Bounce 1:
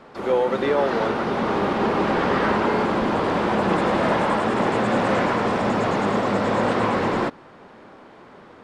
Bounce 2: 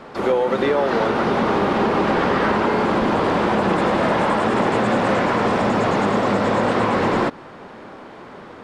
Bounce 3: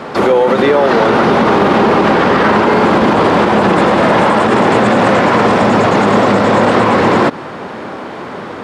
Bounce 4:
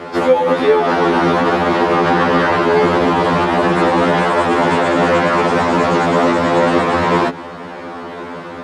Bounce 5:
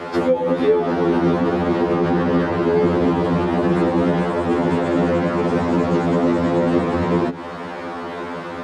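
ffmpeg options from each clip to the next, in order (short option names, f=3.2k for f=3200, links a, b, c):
-af "acompressor=threshold=-22dB:ratio=6,volume=7dB"
-af "highpass=74,alimiter=level_in=14.5dB:limit=-1dB:release=50:level=0:latency=1,volume=-1dB"
-af "afftfilt=real='re*2*eq(mod(b,4),0)':imag='im*2*eq(mod(b,4),0)':win_size=2048:overlap=0.75,volume=-1dB"
-filter_complex "[0:a]acrossover=split=450[a][b];[b]acompressor=threshold=-25dB:ratio=10[c];[a][c]amix=inputs=2:normalize=0"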